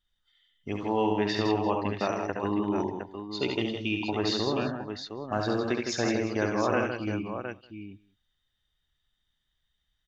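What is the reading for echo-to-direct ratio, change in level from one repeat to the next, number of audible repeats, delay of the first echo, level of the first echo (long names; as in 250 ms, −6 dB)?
−0.5 dB, repeats not evenly spaced, 6, 68 ms, −5.0 dB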